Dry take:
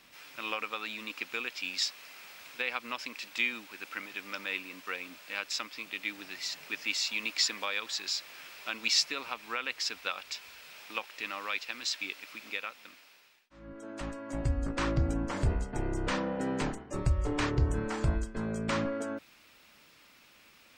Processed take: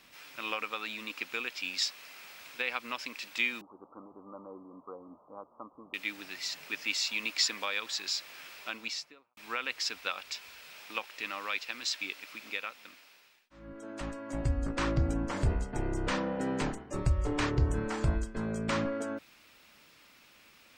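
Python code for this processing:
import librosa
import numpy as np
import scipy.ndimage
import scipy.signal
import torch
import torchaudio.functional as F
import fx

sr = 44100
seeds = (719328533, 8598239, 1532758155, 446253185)

y = fx.steep_lowpass(x, sr, hz=1200.0, slope=96, at=(3.61, 5.94))
y = fx.studio_fade_out(y, sr, start_s=8.54, length_s=0.83)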